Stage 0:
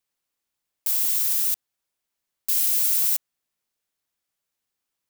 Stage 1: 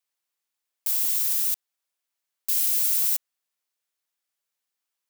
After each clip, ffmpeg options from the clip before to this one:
ffmpeg -i in.wav -af "highpass=frequency=640:poles=1,volume=-1.5dB" out.wav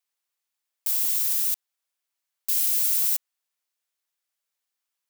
ffmpeg -i in.wav -af "lowshelf=frequency=260:gain=-10" out.wav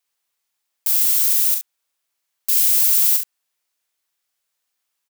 ffmpeg -i in.wav -af "aecho=1:1:41|69:0.501|0.335,volume=6dB" out.wav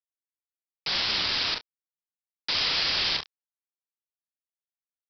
ffmpeg -i in.wav -filter_complex "[0:a]aresample=11025,acrusher=bits=5:mix=0:aa=0.000001,aresample=44100,asplit=2[link_01][link_02];[link_02]adelay=29,volume=-12.5dB[link_03];[link_01][link_03]amix=inputs=2:normalize=0,volume=7.5dB" out.wav

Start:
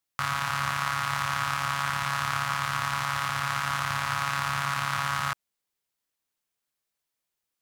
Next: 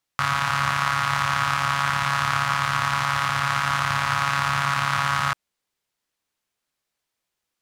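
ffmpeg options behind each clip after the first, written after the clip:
ffmpeg -i in.wav -af "highshelf=frequency=10000:gain=-10,volume=6dB" out.wav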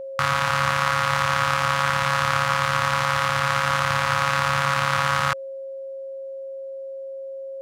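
ffmpeg -i in.wav -af "aeval=exprs='val(0)+0.0251*sin(2*PI*540*n/s)':channel_layout=same,volume=1dB" out.wav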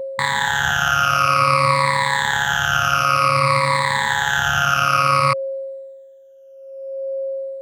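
ffmpeg -i in.wav -af "afftfilt=real='re*pow(10,24/40*sin(2*PI*(0.97*log(max(b,1)*sr/1024/100)/log(2)-(-0.54)*(pts-256)/sr)))':imag='im*pow(10,24/40*sin(2*PI*(0.97*log(max(b,1)*sr/1024/100)/log(2)-(-0.54)*(pts-256)/sr)))':win_size=1024:overlap=0.75,volume=-1.5dB" out.wav

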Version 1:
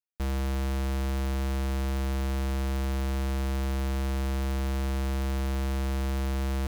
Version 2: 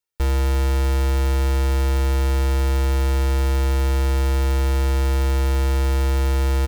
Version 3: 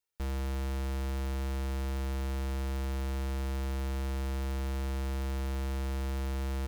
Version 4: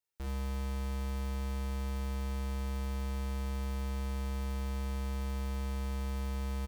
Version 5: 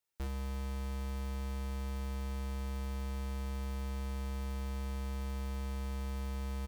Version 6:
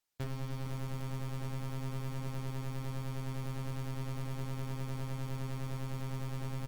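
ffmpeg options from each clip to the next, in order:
ffmpeg -i in.wav -af "aecho=1:1:2.2:0.67,volume=7dB" out.wav
ffmpeg -i in.wav -af "asoftclip=type=tanh:threshold=-29.5dB,volume=-2.5dB" out.wav
ffmpeg -i in.wav -af "aecho=1:1:41|70:0.668|0.596,volume=-5dB" out.wav
ffmpeg -i in.wav -af "alimiter=level_in=10.5dB:limit=-24dB:level=0:latency=1,volume=-10.5dB,volume=2dB" out.wav
ffmpeg -i in.wav -af "aeval=exprs='val(0)*sin(2*PI*62*n/s)':channel_layout=same,volume=4dB" -ar 48000 -c:a libopus -b:a 16k out.opus

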